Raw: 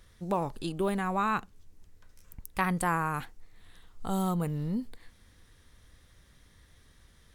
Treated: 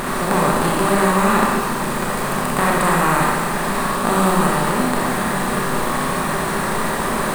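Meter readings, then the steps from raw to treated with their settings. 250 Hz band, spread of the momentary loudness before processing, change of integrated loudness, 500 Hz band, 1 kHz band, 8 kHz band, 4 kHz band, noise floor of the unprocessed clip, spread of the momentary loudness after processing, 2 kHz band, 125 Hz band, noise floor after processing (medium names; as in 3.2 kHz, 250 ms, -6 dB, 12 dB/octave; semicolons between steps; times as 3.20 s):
+14.5 dB, 12 LU, +13.0 dB, +17.0 dB, +16.5 dB, +22.5 dB, +21.0 dB, -61 dBFS, 5 LU, +18.0 dB, +12.0 dB, -22 dBFS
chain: spectral levelling over time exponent 0.2; in parallel at -4.5 dB: bit crusher 5-bit; on the sum: Schroeder reverb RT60 1.4 s, combs from 28 ms, DRR -3 dB; trim -2 dB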